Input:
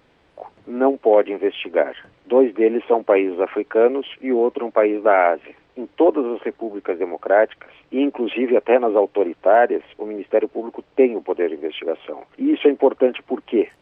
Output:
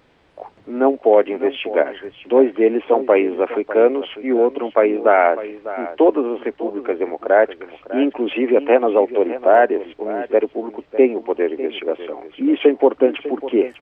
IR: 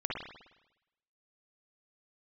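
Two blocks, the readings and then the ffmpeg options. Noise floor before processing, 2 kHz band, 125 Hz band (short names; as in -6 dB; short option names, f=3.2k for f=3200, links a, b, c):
-58 dBFS, +1.5 dB, n/a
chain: -af "aecho=1:1:600:0.2,volume=1.5dB"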